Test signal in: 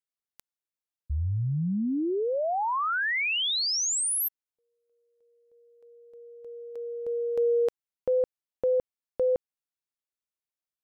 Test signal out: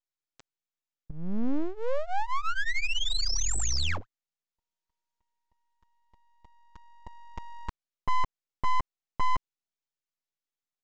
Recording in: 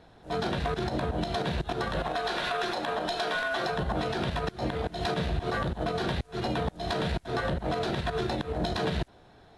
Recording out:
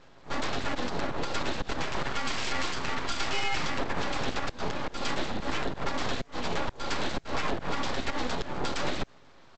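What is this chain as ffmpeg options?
-af "aecho=1:1:7.4:0.86,aresample=16000,aeval=exprs='abs(val(0))':c=same,aresample=44100"

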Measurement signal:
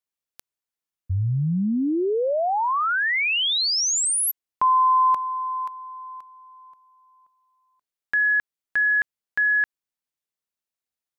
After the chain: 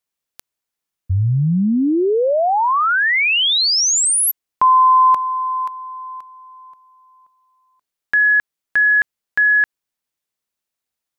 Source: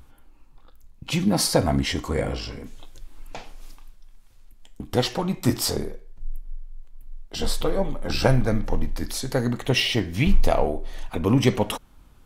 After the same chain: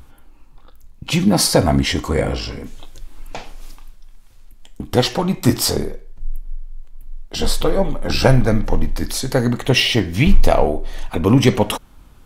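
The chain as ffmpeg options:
-af "apsyclip=8dB,volume=-1.5dB"

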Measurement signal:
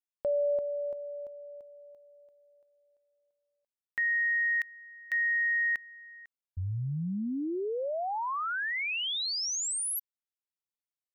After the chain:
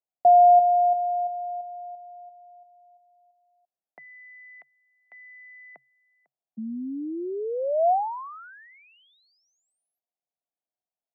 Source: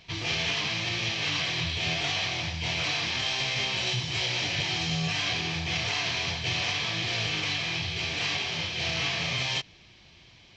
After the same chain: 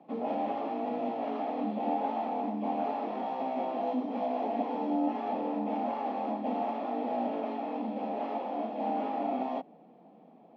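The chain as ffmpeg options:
-af "lowpass=f=580:t=q:w=4.9,afreqshift=130"

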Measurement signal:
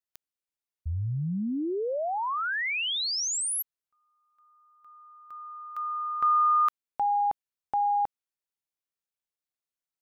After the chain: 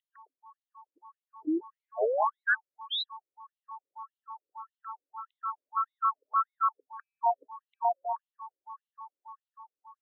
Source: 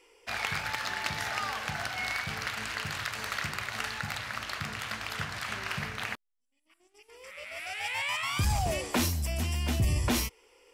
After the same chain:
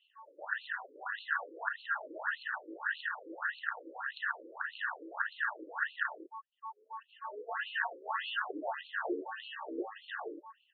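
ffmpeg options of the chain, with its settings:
-filter_complex "[0:a]aeval=exprs='val(0)+0.00316*sin(2*PI*1000*n/s)':c=same,superequalizer=7b=0.501:11b=3.55:13b=0.501:15b=3.55,acrossover=split=150|2600[a][b][c];[b]dynaudnorm=f=690:g=5:m=11.5dB[d];[a][d][c]amix=inputs=3:normalize=0,asuperstop=centerf=2200:order=8:qfactor=1.9,asplit=2[e][f];[f]acompressor=threshold=-34dB:ratio=16:attack=75:release=40:knee=6:detection=peak,volume=-1.5dB[g];[e][g]amix=inputs=2:normalize=0,highpass=f=76:w=0.5412,highpass=f=76:w=1.3066,alimiter=limit=-15.5dB:level=0:latency=1:release=303,acrossover=split=790[h][i];[h]adelay=110[j];[j][i]amix=inputs=2:normalize=0,aeval=exprs='val(0)*sin(2*PI*110*n/s)':c=same,equalizer=f=260:t=o:w=0.2:g=13.5,afftfilt=real='re*between(b*sr/1024,380*pow(3100/380,0.5+0.5*sin(2*PI*1.7*pts/sr))/1.41,380*pow(3100/380,0.5+0.5*sin(2*PI*1.7*pts/sr))*1.41)':imag='im*between(b*sr/1024,380*pow(3100/380,0.5+0.5*sin(2*PI*1.7*pts/sr))/1.41,380*pow(3100/380,0.5+0.5*sin(2*PI*1.7*pts/sr))*1.41)':win_size=1024:overlap=0.75"

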